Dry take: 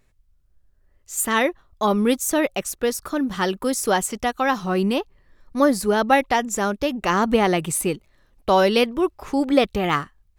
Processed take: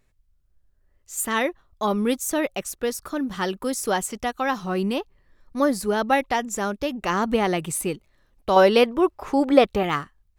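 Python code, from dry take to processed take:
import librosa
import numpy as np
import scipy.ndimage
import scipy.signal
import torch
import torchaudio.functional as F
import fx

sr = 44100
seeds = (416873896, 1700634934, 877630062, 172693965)

y = fx.peak_eq(x, sr, hz=770.0, db=7.0, octaves=2.8, at=(8.56, 9.83))
y = y * 10.0 ** (-3.5 / 20.0)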